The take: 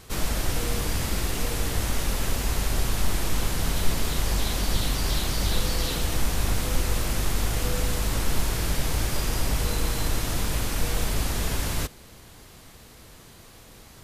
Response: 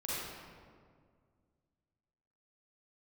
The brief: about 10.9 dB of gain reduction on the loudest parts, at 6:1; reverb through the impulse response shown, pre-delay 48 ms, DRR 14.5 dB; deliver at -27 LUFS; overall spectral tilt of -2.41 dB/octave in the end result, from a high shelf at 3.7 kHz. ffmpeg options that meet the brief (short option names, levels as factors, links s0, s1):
-filter_complex "[0:a]highshelf=f=3700:g=8.5,acompressor=threshold=0.0447:ratio=6,asplit=2[s0][s1];[1:a]atrim=start_sample=2205,adelay=48[s2];[s1][s2]afir=irnorm=-1:irlink=0,volume=0.119[s3];[s0][s3]amix=inputs=2:normalize=0,volume=1.58"